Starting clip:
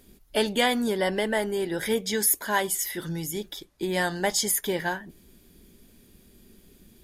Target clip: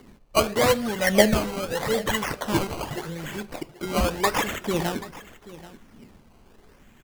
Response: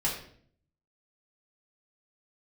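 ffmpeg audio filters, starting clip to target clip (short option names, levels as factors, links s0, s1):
-filter_complex "[0:a]asettb=1/sr,asplit=3[s0][s1][s2];[s0]atrim=end=0.964[s3];[s1]atrim=start=0.96:end=2.45,asetpts=PTS-STARTPTS,afade=t=in:d=0.004:c=qsin,afade=t=out:st=1.486:d=0.004:c=qsin,aecho=1:1:1.5:0.74,atrim=end_sample=65709[s4];[s2]atrim=start=2.446[s5];[s3][s4]acrossfade=d=0.004:c1=hsin:c2=qsin[s6];[s6][s5]acrossfade=d=0.004:c1=qsin:c2=hsin,acrossover=split=120|7200[s7][s8][s9];[s8]aphaser=in_gain=1:out_gain=1:delay=2.4:decay=0.76:speed=0.83:type=triangular[s10];[s9]acompressor=threshold=0.00631:ratio=6[s11];[s7][s10][s11]amix=inputs=3:normalize=0,acrusher=samples=17:mix=1:aa=0.000001:lfo=1:lforange=17:lforate=0.83,aecho=1:1:783:0.126,asplit=2[s12][s13];[1:a]atrim=start_sample=2205[s14];[s13][s14]afir=irnorm=-1:irlink=0,volume=0.0944[s15];[s12][s15]amix=inputs=2:normalize=0"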